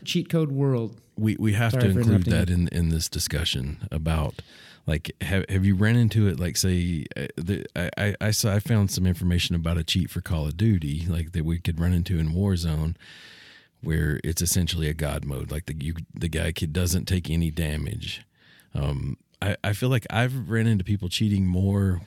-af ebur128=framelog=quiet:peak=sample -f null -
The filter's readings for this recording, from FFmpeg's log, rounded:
Integrated loudness:
  I:         -25.2 LUFS
  Threshold: -35.4 LUFS
Loudness range:
  LRA:         4.2 LU
  Threshold: -45.7 LUFS
  LRA low:   -28.0 LUFS
  LRA high:  -23.8 LUFS
Sample peak:
  Peak:       -6.7 dBFS